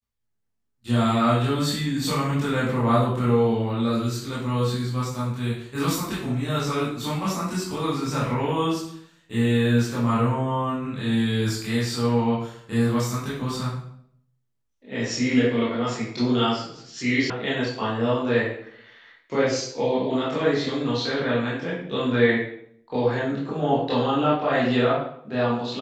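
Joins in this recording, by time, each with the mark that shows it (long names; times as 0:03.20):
0:17.30: cut off before it has died away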